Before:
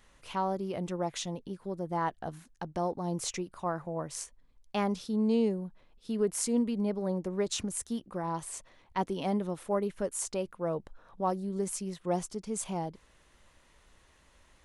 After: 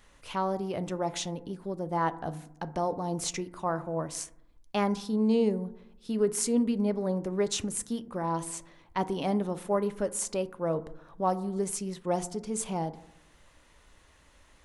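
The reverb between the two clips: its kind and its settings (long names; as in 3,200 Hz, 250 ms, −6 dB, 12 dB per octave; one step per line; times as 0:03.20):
feedback delay network reverb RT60 0.77 s, low-frequency decay 1.3×, high-frequency decay 0.3×, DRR 12 dB
level +2.5 dB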